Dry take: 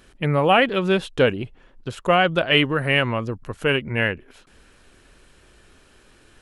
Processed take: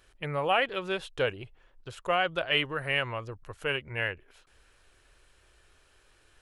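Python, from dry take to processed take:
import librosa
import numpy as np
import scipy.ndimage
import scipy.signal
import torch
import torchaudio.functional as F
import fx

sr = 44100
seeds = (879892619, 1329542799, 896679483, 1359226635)

y = fx.peak_eq(x, sr, hz=220.0, db=-13.5, octaves=1.1)
y = F.gain(torch.from_numpy(y), -8.0).numpy()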